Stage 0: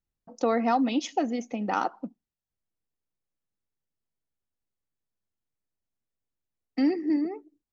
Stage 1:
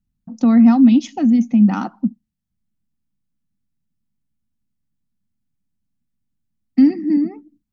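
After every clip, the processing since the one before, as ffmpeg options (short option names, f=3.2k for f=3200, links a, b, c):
-af "lowshelf=f=310:t=q:w=3:g=12,volume=1.5dB"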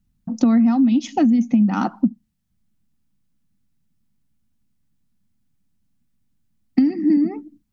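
-af "acompressor=threshold=-20dB:ratio=12,volume=7dB"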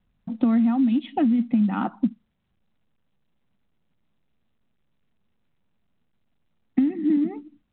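-af "volume=-4.5dB" -ar 8000 -c:a pcm_mulaw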